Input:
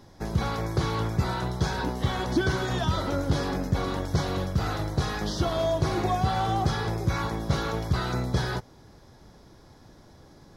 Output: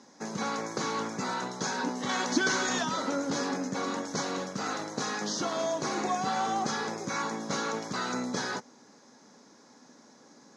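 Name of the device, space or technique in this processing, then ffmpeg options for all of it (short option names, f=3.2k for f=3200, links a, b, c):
television speaker: -filter_complex "[0:a]highpass=f=230:w=0.5412,highpass=f=230:w=1.3066,equalizer=f=240:t=q:w=4:g=6,equalizer=f=350:t=q:w=4:g=-8,equalizer=f=670:t=q:w=4:g=-5,equalizer=f=3.3k:t=q:w=4:g=-6,equalizer=f=6.5k:t=q:w=4:g=10,lowpass=f=8.5k:w=0.5412,lowpass=f=8.5k:w=1.3066,asettb=1/sr,asplit=3[a][b][c];[a]atrim=end=2.094[d];[b]atrim=start=2.09:end=2.83,asetpts=PTS-STARTPTS,afade=t=in:d=0.004:c=qsin,afade=t=out:st=0.736:d=0.004:c=qsin,equalizer=f=3.9k:w=0.31:g=5.5[e];[c]atrim=start=2.826[f];[d][e]acrossfade=d=0.004:c1=hsin:c2=qsin[g];[g][f]acrossfade=d=0.004:c1=qsin:c2=hsin"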